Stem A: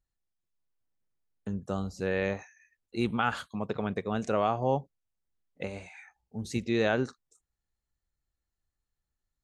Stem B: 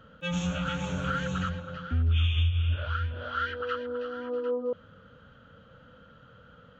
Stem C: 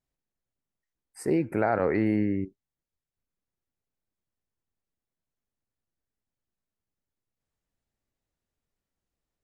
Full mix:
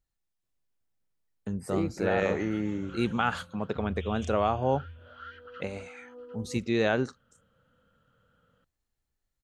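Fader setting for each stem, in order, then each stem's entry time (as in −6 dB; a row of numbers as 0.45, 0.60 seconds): +1.0, −14.5, −5.5 decibels; 0.00, 1.85, 0.45 seconds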